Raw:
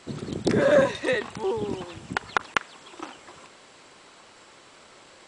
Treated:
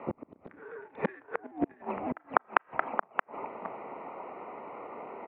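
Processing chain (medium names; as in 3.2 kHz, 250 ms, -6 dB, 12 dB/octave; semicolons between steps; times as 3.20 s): local Wiener filter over 25 samples; peaking EQ 480 Hz -6.5 dB 1.2 oct; compression 2:1, threshold -34 dBFS, peak gain reduction 9.5 dB; on a send: delay 625 ms -13.5 dB; on the sum: Schroeder reverb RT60 0.33 s, combs from 26 ms, DRR 18 dB; inverted gate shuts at -27 dBFS, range -32 dB; mistuned SSB -130 Hz 470–2300 Hz; loudness maximiser +20.5 dB; trim -1 dB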